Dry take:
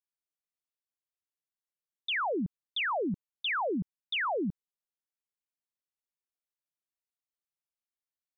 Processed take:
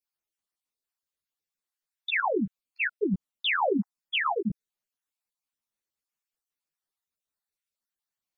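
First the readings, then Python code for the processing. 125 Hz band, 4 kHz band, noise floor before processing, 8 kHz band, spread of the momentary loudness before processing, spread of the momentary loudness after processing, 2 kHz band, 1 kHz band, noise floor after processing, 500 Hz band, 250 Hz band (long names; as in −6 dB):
+3.5 dB, +2.0 dB, below −85 dBFS, can't be measured, 6 LU, 9 LU, +4.5 dB, +3.0 dB, below −85 dBFS, +4.0 dB, +4.0 dB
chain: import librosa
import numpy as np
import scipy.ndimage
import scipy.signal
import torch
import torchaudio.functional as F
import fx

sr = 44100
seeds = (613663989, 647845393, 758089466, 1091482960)

y = fx.spec_dropout(x, sr, seeds[0], share_pct=33)
y = fx.ensemble(y, sr)
y = y * 10.0 ** (8.0 / 20.0)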